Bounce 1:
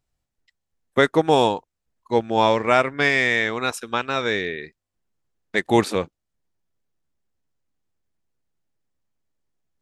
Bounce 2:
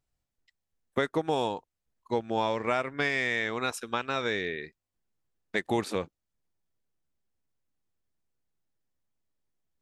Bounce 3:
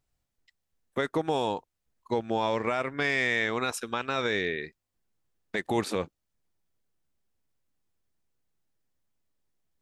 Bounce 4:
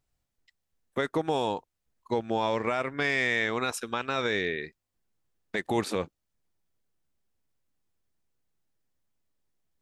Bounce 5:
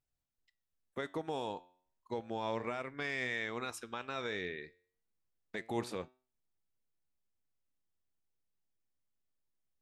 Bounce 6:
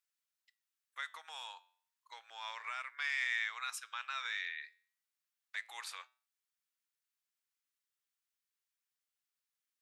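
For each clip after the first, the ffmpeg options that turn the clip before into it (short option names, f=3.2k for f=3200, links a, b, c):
-af "acompressor=threshold=-21dB:ratio=3,volume=-4.5dB"
-af "alimiter=limit=-19.5dB:level=0:latency=1:release=15,volume=3dB"
-af anull
-af "flanger=delay=7.8:depth=3.4:regen=87:speed=0.32:shape=sinusoidal,volume=-6dB"
-af "highpass=f=1.2k:w=0.5412,highpass=f=1.2k:w=1.3066,volume=3dB"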